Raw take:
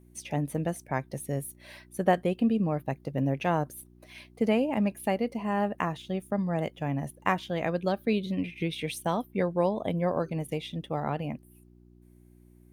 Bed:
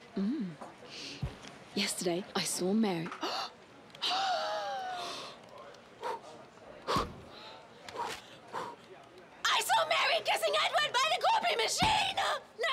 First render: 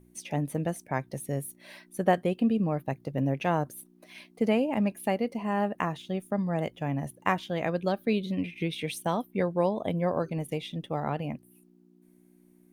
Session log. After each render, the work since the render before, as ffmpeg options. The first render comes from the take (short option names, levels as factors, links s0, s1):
-af "bandreject=f=60:t=h:w=4,bandreject=f=120:t=h:w=4"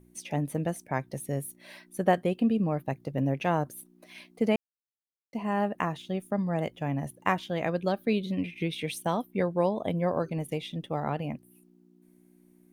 -filter_complex "[0:a]asplit=3[s0][s1][s2];[s0]atrim=end=4.56,asetpts=PTS-STARTPTS,afade=t=out:st=4.556:d=0.004:c=hsin[s3];[s1]atrim=start=4.56:end=5.33,asetpts=PTS-STARTPTS,volume=0[s4];[s2]atrim=start=5.33,asetpts=PTS-STARTPTS,afade=t=in:d=0.004:c=hsin[s5];[s3][s4][s5]concat=n=3:v=0:a=1"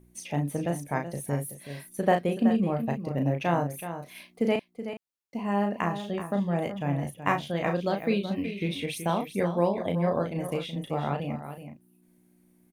-filter_complex "[0:a]asplit=2[s0][s1];[s1]adelay=35,volume=0.531[s2];[s0][s2]amix=inputs=2:normalize=0,aecho=1:1:376:0.299"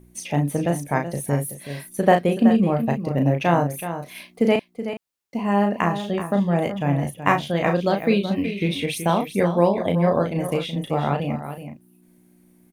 -af "volume=2.24"